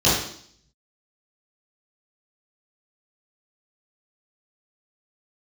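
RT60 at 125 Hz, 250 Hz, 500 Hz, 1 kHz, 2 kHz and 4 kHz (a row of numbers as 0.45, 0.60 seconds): 0.65, 0.70, 0.60, 0.60, 0.55, 0.70 seconds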